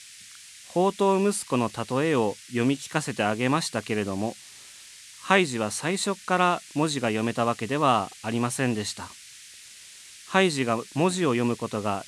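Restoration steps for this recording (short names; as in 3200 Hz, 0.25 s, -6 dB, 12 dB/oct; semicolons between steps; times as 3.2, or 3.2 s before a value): noise print and reduce 23 dB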